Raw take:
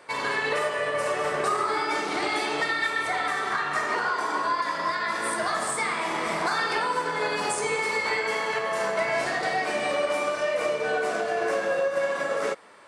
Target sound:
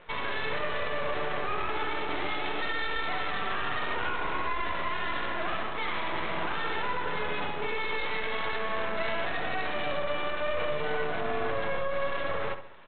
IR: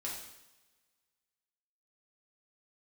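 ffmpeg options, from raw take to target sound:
-filter_complex "[0:a]alimiter=limit=-21dB:level=0:latency=1:release=20,aresample=8000,aeval=exprs='max(val(0),0)':channel_layout=same,aresample=44100,asplit=2[link_01][link_02];[link_02]adelay=67,lowpass=frequency=2600:poles=1,volume=-9dB,asplit=2[link_03][link_04];[link_04]adelay=67,lowpass=frequency=2600:poles=1,volume=0.44,asplit=2[link_05][link_06];[link_06]adelay=67,lowpass=frequency=2600:poles=1,volume=0.44,asplit=2[link_07][link_08];[link_08]adelay=67,lowpass=frequency=2600:poles=1,volume=0.44,asplit=2[link_09][link_10];[link_10]adelay=67,lowpass=frequency=2600:poles=1,volume=0.44[link_11];[link_01][link_03][link_05][link_07][link_09][link_11]amix=inputs=6:normalize=0,volume=1.5dB"

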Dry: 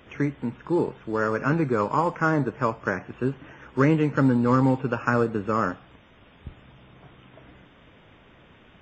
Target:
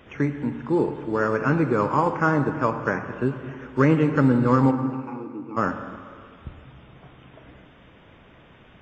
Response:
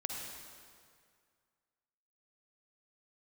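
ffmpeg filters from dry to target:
-filter_complex "[0:a]asplit=3[link_01][link_02][link_03];[link_01]afade=type=out:start_time=4.7:duration=0.02[link_04];[link_02]asplit=3[link_05][link_06][link_07];[link_05]bandpass=frequency=300:width_type=q:width=8,volume=0dB[link_08];[link_06]bandpass=frequency=870:width_type=q:width=8,volume=-6dB[link_09];[link_07]bandpass=frequency=2240:width_type=q:width=8,volume=-9dB[link_10];[link_08][link_09][link_10]amix=inputs=3:normalize=0,afade=type=in:start_time=4.7:duration=0.02,afade=type=out:start_time=5.56:duration=0.02[link_11];[link_03]afade=type=in:start_time=5.56:duration=0.02[link_12];[link_04][link_11][link_12]amix=inputs=3:normalize=0,asplit=2[link_13][link_14];[link_14]highshelf=frequency=4700:gain=-11.5[link_15];[1:a]atrim=start_sample=2205[link_16];[link_15][link_16]afir=irnorm=-1:irlink=0,volume=-2.5dB[link_17];[link_13][link_17]amix=inputs=2:normalize=0,volume=-2.5dB"

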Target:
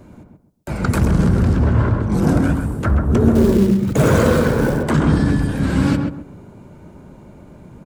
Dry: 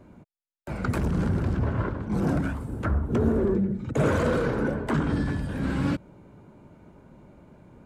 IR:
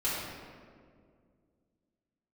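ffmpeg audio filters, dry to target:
-filter_complex "[0:a]bass=frequency=250:gain=2,treble=frequency=4000:gain=7,asettb=1/sr,asplit=3[link_01][link_02][link_03];[link_01]atrim=end=3.354[link_04];[link_02]atrim=start=3.35:end=4.83,asetpts=PTS-STARTPTS,afade=type=in:duration=0.004:curve=qsin,afade=type=out:start_time=1.476:duration=0.004:curve=qsin,acrusher=bits=5:mode=log:mix=0:aa=0.000001[link_05];[link_03]atrim=start=4.826[link_06];[link_04][link_05]acrossfade=duration=0.004:curve1=hsin:curve2=qsin[link_07];[link_07][link_06]acrossfade=duration=0.004:curve1=qsin:curve2=hsin,asplit=2[link_08][link_09];[link_09]adelay=132,lowpass=frequency=1300:poles=1,volume=-3dB,asplit=2[link_10][link_11];[link_11]adelay=132,lowpass=frequency=1300:poles=1,volume=0.29,asplit=2[link_12][link_13];[link_13]adelay=132,lowpass=frequency=1300:poles=1,volume=0.29,asplit=2[link_14][link_15];[link_15]adelay=132,lowpass=frequency=1300:poles=1,volume=0.29[link_16];[link_10][link_12][link_14][link_16]amix=inputs=4:normalize=0[link_17];[link_08][link_17]amix=inputs=2:normalize=0,volume=7dB"

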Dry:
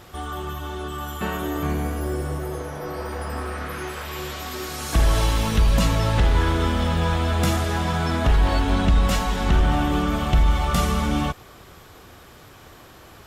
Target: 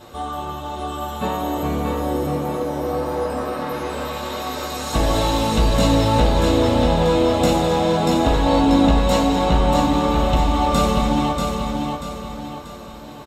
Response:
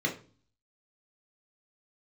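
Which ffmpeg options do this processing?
-filter_complex "[0:a]aecho=1:1:637|1274|1911|2548|3185:0.596|0.25|0.105|0.0441|0.0185[link_01];[1:a]atrim=start_sample=2205,asetrate=83790,aresample=44100[link_02];[link_01][link_02]afir=irnorm=-1:irlink=0"

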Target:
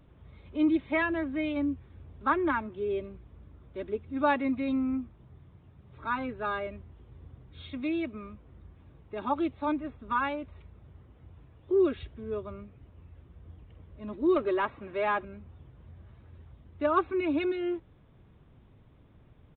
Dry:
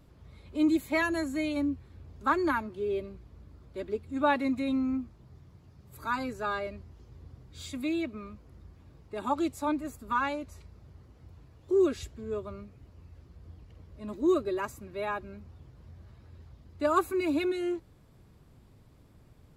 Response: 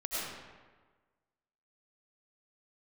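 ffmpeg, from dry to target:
-filter_complex "[0:a]asettb=1/sr,asplit=3[link_01][link_02][link_03];[link_01]atrim=end=14.364[link_04];[link_02]atrim=start=14.36:end=15.25,asetpts=PTS-STARTPTS,afade=type=in:duration=0.004:curve=qsin,afade=type=out:start_time=0.886:duration=0.004:curve=qsin,asplit=2[link_05][link_06];[link_06]highpass=frequency=720:poles=1,volume=16dB,asoftclip=type=tanh:threshold=-17.5dB[link_07];[link_05][link_07]amix=inputs=2:normalize=0,lowpass=frequency=2100:poles=1,volume=-6dB[link_08];[link_03]atrim=start=15.246[link_09];[link_04][link_08]acrossfade=duration=0.004:curve1=hsin:curve2=qsin[link_10];[link_10][link_09]acrossfade=duration=0.004:curve1=qsin:curve2=hsin,aresample=8000,aresample=44100"

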